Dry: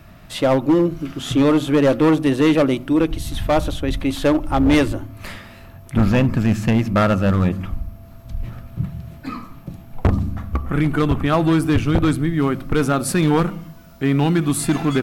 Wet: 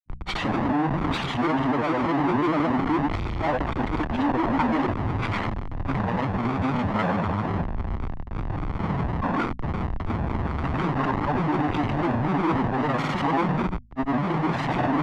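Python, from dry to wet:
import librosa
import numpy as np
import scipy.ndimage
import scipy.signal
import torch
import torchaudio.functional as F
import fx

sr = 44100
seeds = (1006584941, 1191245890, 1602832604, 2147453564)

y = fx.tracing_dist(x, sr, depth_ms=0.26)
y = fx.schmitt(y, sr, flips_db=-36.0)
y = scipy.signal.sosfilt(scipy.signal.butter(2, 1600.0, 'lowpass', fs=sr, output='sos'), y)
y = fx.low_shelf(y, sr, hz=140.0, db=-11.5)
y = fx.hum_notches(y, sr, base_hz=60, count=4)
y = y + 0.48 * np.pad(y, (int(1.0 * sr / 1000.0), 0))[:len(y)]
y = fx.granulator(y, sr, seeds[0], grain_ms=100.0, per_s=20.0, spray_ms=100.0, spread_st=3)
y = fx.band_widen(y, sr, depth_pct=70)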